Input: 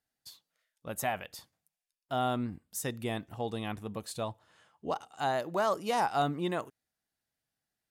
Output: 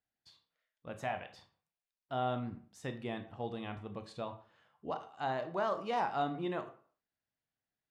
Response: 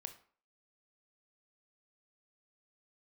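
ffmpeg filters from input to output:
-filter_complex "[0:a]lowpass=3600[s0];[1:a]atrim=start_sample=2205[s1];[s0][s1]afir=irnorm=-1:irlink=0"

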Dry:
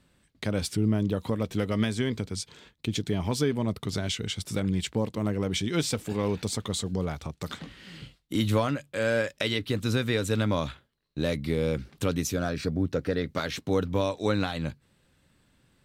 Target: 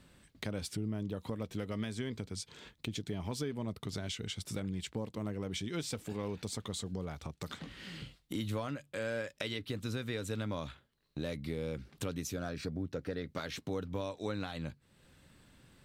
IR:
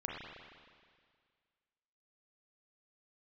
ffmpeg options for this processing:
-af "acompressor=threshold=0.00316:ratio=2,volume=1.5"

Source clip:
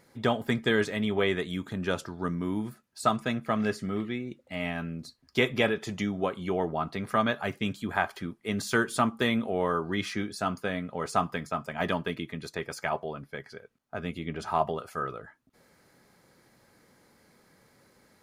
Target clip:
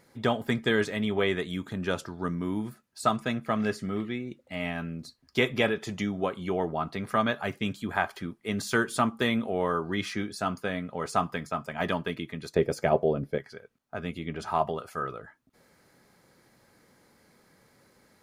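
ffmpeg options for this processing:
-filter_complex "[0:a]asettb=1/sr,asplit=3[s0][s1][s2];[s0]atrim=end=12.564[s3];[s1]atrim=start=12.56:end=13.38,asetpts=PTS-STARTPTS,afade=t=in:d=0.004:c=qsin,afade=t=out:st=0.816:d=0.004:c=qsin,lowshelf=f=730:t=q:w=1.5:g=10[s4];[s2]atrim=start=13.376[s5];[s3][s4]acrossfade=d=0.004:c1=hsin:c2=qsin[s6];[s6][s5]acrossfade=d=0.004:c1=qsin:c2=hsin"

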